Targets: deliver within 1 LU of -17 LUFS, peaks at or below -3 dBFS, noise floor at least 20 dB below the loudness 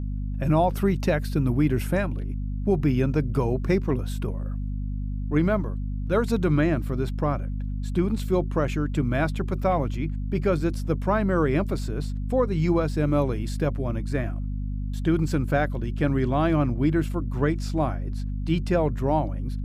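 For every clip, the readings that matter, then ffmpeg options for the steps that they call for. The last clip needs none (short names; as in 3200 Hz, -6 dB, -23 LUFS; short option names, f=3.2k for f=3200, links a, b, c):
hum 50 Hz; harmonics up to 250 Hz; hum level -26 dBFS; loudness -25.5 LUFS; peak -10.5 dBFS; loudness target -17.0 LUFS
-> -af "bandreject=f=50:t=h:w=6,bandreject=f=100:t=h:w=6,bandreject=f=150:t=h:w=6,bandreject=f=200:t=h:w=6,bandreject=f=250:t=h:w=6"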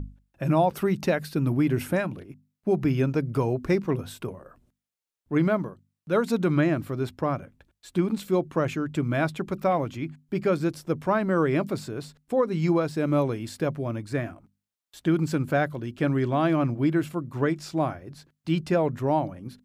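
hum none; loudness -26.5 LUFS; peak -10.5 dBFS; loudness target -17.0 LUFS
-> -af "volume=9.5dB,alimiter=limit=-3dB:level=0:latency=1"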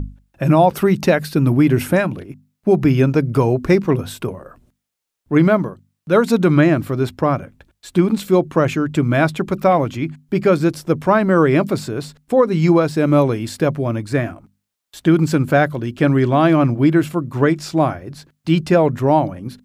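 loudness -17.0 LUFS; peak -3.0 dBFS; noise floor -76 dBFS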